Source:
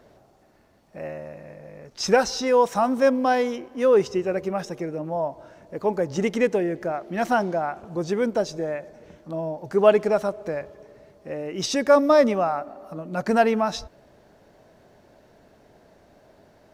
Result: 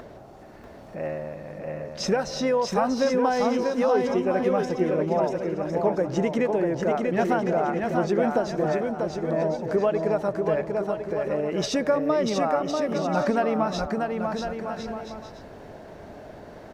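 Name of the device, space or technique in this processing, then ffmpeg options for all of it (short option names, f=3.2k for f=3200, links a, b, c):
upward and downward compression: -af "acompressor=mode=upward:threshold=-39dB:ratio=2.5,acompressor=threshold=-24dB:ratio=6,highshelf=f=3.5k:g=-8.5,aecho=1:1:640|1056|1326|1502|1616:0.631|0.398|0.251|0.158|0.1,volume=3.5dB"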